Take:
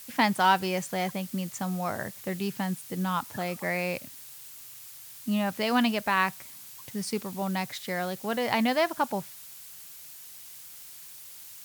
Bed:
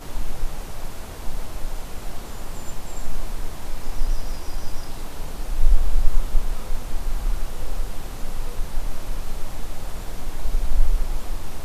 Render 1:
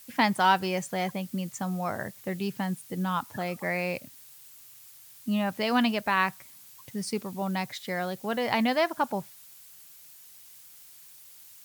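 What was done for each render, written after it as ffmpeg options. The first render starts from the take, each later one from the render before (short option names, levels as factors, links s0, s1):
-af "afftdn=nr=6:nf=-46"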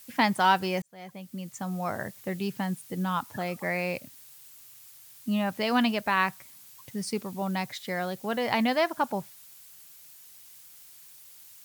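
-filter_complex "[0:a]asplit=2[s0][s1];[s0]atrim=end=0.82,asetpts=PTS-STARTPTS,afade=t=out:st=0.816:d=0.004:c=hsin[s2];[s1]atrim=start=0.82,asetpts=PTS-STARTPTS,afade=t=in:d=1.07[s3];[s2][s3]concat=n=2:v=0:a=1"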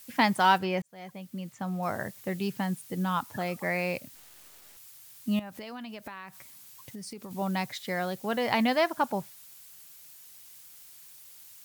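-filter_complex "[0:a]asettb=1/sr,asplit=3[s0][s1][s2];[s0]atrim=end=0.584[s3];[s1]atrim=start=0.58:end=1.83,asetpts=PTS-STARTPTS,afade=t=in:d=0.004:c=qsin,afade=t=out:st=1.246:d=0.004:c=qsin,acrossover=split=3900[s4][s5];[s5]acompressor=threshold=0.00178:ratio=4:attack=1:release=60[s6];[s4][s6]amix=inputs=2:normalize=0[s7];[s2]atrim=start=1.826[s8];[s3][s7]acrossfade=d=0.004:c1=hsin:c2=qsin[s9];[s9][s8]acrossfade=d=0.004:c1=qsin:c2=hsin,asettb=1/sr,asplit=3[s10][s11][s12];[s10]atrim=end=4.154[s13];[s11]atrim=start=4.15:end=4.77,asetpts=PTS-STARTPTS,afade=t=in:d=0.004:c=qsin,afade=t=out:st=0.616:d=0.004:c=qsin,acrusher=bits=5:dc=4:mix=0:aa=0.000001[s14];[s12]atrim=start=4.766[s15];[s13][s14]acrossfade=d=0.004:c1=hsin:c2=qsin[s16];[s16][s15]acrossfade=d=0.004:c1=qsin:c2=hsin,asettb=1/sr,asplit=3[s17][s18][s19];[s17]atrim=end=5.394[s20];[s18]atrim=start=5.39:end=7.31,asetpts=PTS-STARTPTS,afade=t=in:d=0.004:c=qsin,afade=t=out:st=1.916:d=0.004:c=qsin,acompressor=threshold=0.0141:ratio=16:attack=3.2:release=140:knee=1:detection=peak[s21];[s19]atrim=start=7.306[s22];[s20][s21]acrossfade=d=0.004:c1=hsin:c2=qsin[s23];[s23][s22]acrossfade=d=0.004:c1=qsin:c2=hsin"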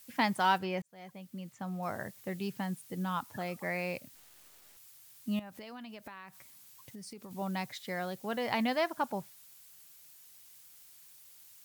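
-af "volume=0.531"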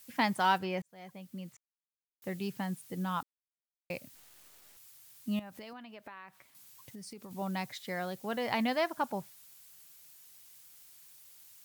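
-filter_complex "[0:a]asettb=1/sr,asplit=3[s0][s1][s2];[s0]atrim=end=5.734[s3];[s1]atrim=start=5.73:end=6.55,asetpts=PTS-STARTPTS,afade=t=in:d=0.004:c=qsin,afade=t=out:st=0.816:d=0.004:c=qsin,bass=f=250:g=-7,treble=f=4000:g=-10[s4];[s2]atrim=start=6.546[s5];[s3][s4]acrossfade=d=0.004:c1=hsin:c2=qsin[s6];[s6][s5]acrossfade=d=0.004:c1=qsin:c2=hsin,asplit=5[s7][s8][s9][s10][s11];[s7]atrim=end=1.57,asetpts=PTS-STARTPTS,afade=t=out:st=1.566:d=0.004:c=hsin[s12];[s8]atrim=start=1.57:end=2.22,asetpts=PTS-STARTPTS,volume=0[s13];[s9]atrim=start=2.22:end=3.23,asetpts=PTS-STARTPTS,afade=t=in:d=0.004:c=hsin,afade=t=out:st=1.006:d=0.004:c=hsin[s14];[s10]atrim=start=3.23:end=3.9,asetpts=PTS-STARTPTS,volume=0[s15];[s11]atrim=start=3.9,asetpts=PTS-STARTPTS,afade=t=in:d=0.004:c=hsin[s16];[s12][s13][s14][s15][s16]concat=n=5:v=0:a=1"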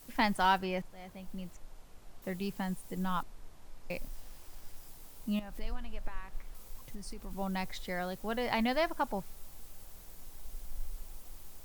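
-filter_complex "[1:a]volume=0.075[s0];[0:a][s0]amix=inputs=2:normalize=0"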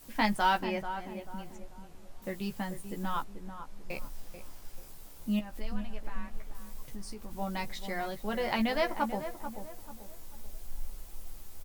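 -filter_complex "[0:a]asplit=2[s0][s1];[s1]adelay=14,volume=0.562[s2];[s0][s2]amix=inputs=2:normalize=0,asplit=2[s3][s4];[s4]adelay=438,lowpass=f=1300:p=1,volume=0.355,asplit=2[s5][s6];[s6]adelay=438,lowpass=f=1300:p=1,volume=0.39,asplit=2[s7][s8];[s8]adelay=438,lowpass=f=1300:p=1,volume=0.39,asplit=2[s9][s10];[s10]adelay=438,lowpass=f=1300:p=1,volume=0.39[s11];[s5][s7][s9][s11]amix=inputs=4:normalize=0[s12];[s3][s12]amix=inputs=2:normalize=0"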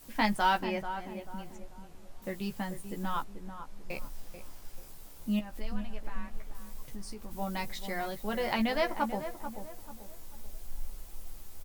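-filter_complex "[0:a]asettb=1/sr,asplit=3[s0][s1][s2];[s0]atrim=end=7.314[s3];[s1]atrim=start=7.31:end=8.54,asetpts=PTS-STARTPTS,afade=t=in:d=0.004:c=qsin,afade=t=out:st=1.226:d=0.004:c=qsin,highshelf=f=8400:g=4.5[s4];[s2]atrim=start=8.536[s5];[s3][s4]acrossfade=d=0.004:c1=hsin:c2=qsin[s6];[s6][s5]acrossfade=d=0.004:c1=qsin:c2=hsin"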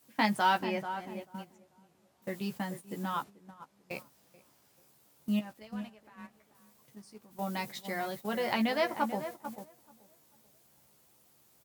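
-af "highpass=f=110:w=0.5412,highpass=f=110:w=1.3066,agate=range=0.282:threshold=0.00794:ratio=16:detection=peak"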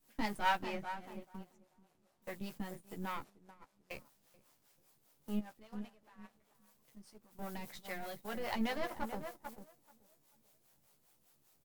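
-filter_complex "[0:a]aeval=exprs='if(lt(val(0),0),0.251*val(0),val(0))':c=same,acrossover=split=400[s0][s1];[s0]aeval=exprs='val(0)*(1-0.7/2+0.7/2*cos(2*PI*5*n/s))':c=same[s2];[s1]aeval=exprs='val(0)*(1-0.7/2-0.7/2*cos(2*PI*5*n/s))':c=same[s3];[s2][s3]amix=inputs=2:normalize=0"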